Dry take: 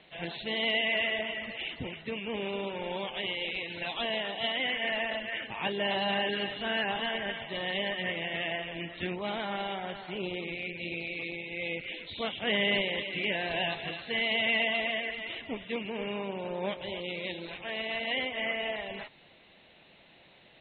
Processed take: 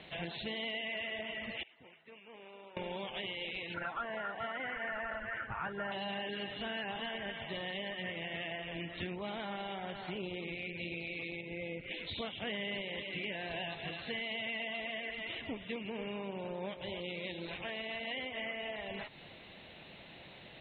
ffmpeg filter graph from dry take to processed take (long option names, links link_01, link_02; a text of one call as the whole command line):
ffmpeg -i in.wav -filter_complex "[0:a]asettb=1/sr,asplit=3[link_01][link_02][link_03];[link_01]atrim=end=1.634[link_04];[link_02]atrim=start=1.63:end=2.77,asetpts=PTS-STARTPTS,afade=type=in:duration=0.004:curve=qsin,afade=type=out:start_time=1.136:duration=0.004:curve=qsin,lowpass=1200,aderivative[link_05];[link_03]atrim=start=2.766[link_06];[link_04][link_05]acrossfade=duration=0.004:curve1=hsin:curve2=qsin[link_07];[link_07][link_06]acrossfade=duration=0.004:curve1=qsin:curve2=hsin,asettb=1/sr,asplit=3[link_08][link_09][link_10];[link_08]atrim=end=3.744[link_11];[link_09]atrim=start=3.74:end=5.92,asetpts=PTS-STARTPTS,afade=type=in:duration=0.004:curve=qsin,afade=type=out:start_time=2.176:duration=0.004:curve=qsin,lowpass=frequency=1400:width_type=q:width=14,asubboost=boost=8:cutoff=110[link_12];[link_10]atrim=start=5.916[link_13];[link_11][link_12]acrossfade=duration=0.004:curve1=hsin:curve2=qsin[link_14];[link_14][link_13]acrossfade=duration=0.004:curve1=qsin:curve2=hsin,asettb=1/sr,asplit=3[link_15][link_16][link_17];[link_15]atrim=end=11.414[link_18];[link_16]atrim=start=11.41:end=11.91,asetpts=PTS-STARTPTS,afade=type=in:duration=0.004:curve=qsin,afade=type=out:start_time=0.496:duration=0.004:curve=qsin,lowpass=frequency=1200:poles=1,bandreject=frequency=810:width=14[link_19];[link_17]atrim=start=11.906[link_20];[link_18][link_19]acrossfade=duration=0.004:curve1=hsin:curve2=qsin[link_21];[link_21][link_20]acrossfade=duration=0.004:curve1=qsin:curve2=hsin,equalizer=frequency=89:width=0.58:gain=5,acompressor=threshold=-44dB:ratio=4,volume=4.5dB" out.wav